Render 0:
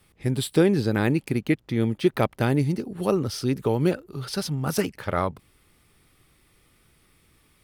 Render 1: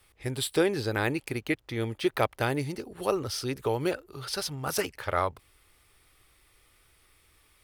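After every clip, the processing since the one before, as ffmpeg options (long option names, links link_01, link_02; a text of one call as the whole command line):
ffmpeg -i in.wav -af "equalizer=frequency=190:width_type=o:width=1.4:gain=-15" out.wav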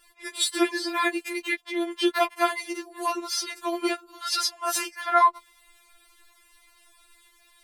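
ffmpeg -i in.wav -af "equalizer=frequency=250:width_type=o:width=1:gain=-10,equalizer=frequency=500:width_type=o:width=1:gain=5,equalizer=frequency=1000:width_type=o:width=1:gain=8,equalizer=frequency=2000:width_type=o:width=1:gain=4,equalizer=frequency=4000:width_type=o:width=1:gain=5,equalizer=frequency=8000:width_type=o:width=1:gain=7,afftfilt=real='re*4*eq(mod(b,16),0)':imag='im*4*eq(mod(b,16),0)':win_size=2048:overlap=0.75,volume=2dB" out.wav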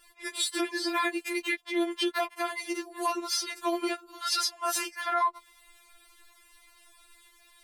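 ffmpeg -i in.wav -af "alimiter=limit=-19dB:level=0:latency=1:release=242" out.wav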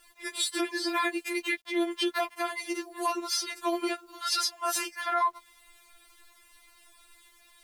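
ffmpeg -i in.wav -af "acrusher=bits=10:mix=0:aa=0.000001" out.wav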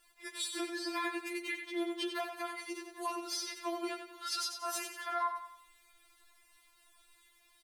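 ffmpeg -i in.wav -af "aecho=1:1:92|184|276|368|460:0.422|0.169|0.0675|0.027|0.0108,volume=-8.5dB" out.wav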